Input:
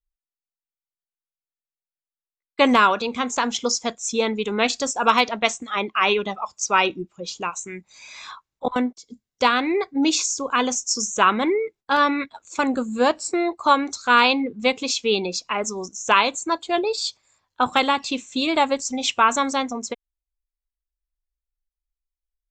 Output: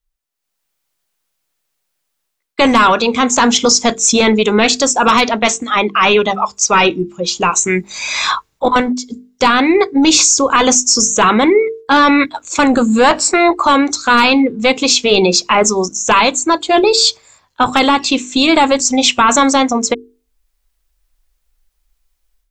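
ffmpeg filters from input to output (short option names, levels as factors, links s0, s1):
-filter_complex "[0:a]dynaudnorm=f=320:g=3:m=4.73,asettb=1/sr,asplit=3[s0][s1][s2];[s0]atrim=end=13.044[s3];[s1]atrim=start=13.04:end=13.65,asetpts=PTS-STARTPTS,afade=t=in:d=0.004:c=qsin,afade=t=out:st=0.606:d=0.004:c=qsin,equalizer=f=1200:w=0.43:g=8.5[s4];[s2]atrim=start=13.646[s5];[s3][s4]acrossfade=d=0.004:c1=hsin:c2=qsin[s6];[s6][s5]acrossfade=d=0.004:c1=qsin:c2=hsin,apsyclip=5.62,bandreject=f=50:t=h:w=6,bandreject=f=100:t=h:w=6,bandreject=f=150:t=h:w=6,bandreject=f=200:t=h:w=6,bandreject=f=250:t=h:w=6,bandreject=f=300:t=h:w=6,bandreject=f=350:t=h:w=6,bandreject=f=400:t=h:w=6,bandreject=f=450:t=h:w=6,volume=0.562"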